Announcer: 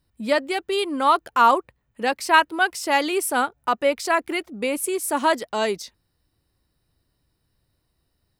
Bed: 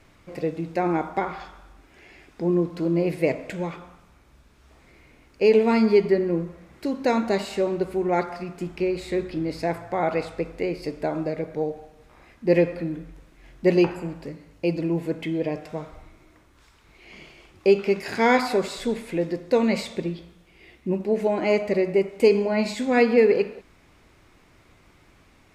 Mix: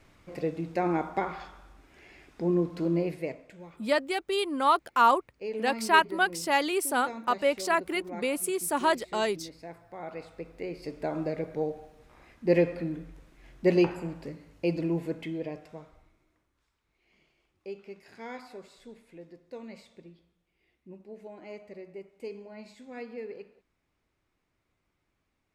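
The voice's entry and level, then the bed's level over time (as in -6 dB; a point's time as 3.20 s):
3.60 s, -5.0 dB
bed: 2.95 s -4 dB
3.49 s -18 dB
9.87 s -18 dB
11.23 s -4 dB
14.91 s -4 dB
16.80 s -22.5 dB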